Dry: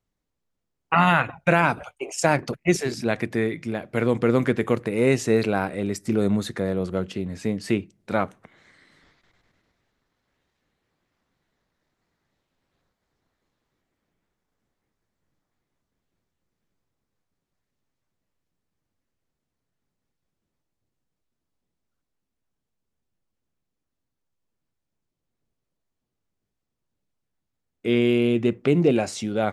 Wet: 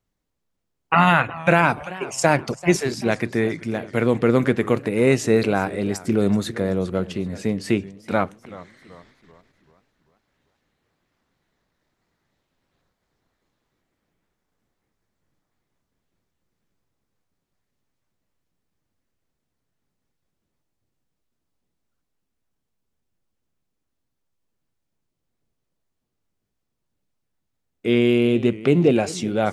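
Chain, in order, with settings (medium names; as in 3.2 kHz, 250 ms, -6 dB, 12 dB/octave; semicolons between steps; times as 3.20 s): modulated delay 385 ms, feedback 44%, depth 168 cents, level -18 dB; trim +2.5 dB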